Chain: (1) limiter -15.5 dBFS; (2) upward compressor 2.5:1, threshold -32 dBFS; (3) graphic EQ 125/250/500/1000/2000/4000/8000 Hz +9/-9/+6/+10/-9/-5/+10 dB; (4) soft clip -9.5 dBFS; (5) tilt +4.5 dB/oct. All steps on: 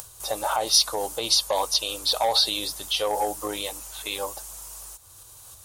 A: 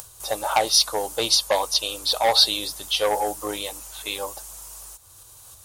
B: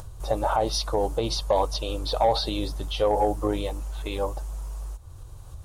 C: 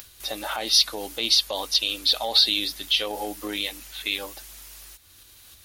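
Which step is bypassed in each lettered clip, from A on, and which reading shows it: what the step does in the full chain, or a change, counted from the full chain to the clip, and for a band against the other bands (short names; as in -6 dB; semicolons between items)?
1, momentary loudness spread change +2 LU; 5, 125 Hz band +18.5 dB; 3, crest factor change -1.5 dB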